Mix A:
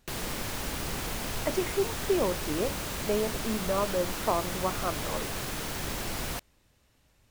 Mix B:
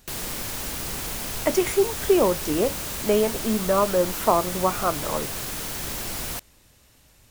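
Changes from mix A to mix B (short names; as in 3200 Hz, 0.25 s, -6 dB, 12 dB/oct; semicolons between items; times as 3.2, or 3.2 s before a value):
speech +8.0 dB; master: add high shelf 5200 Hz +8.5 dB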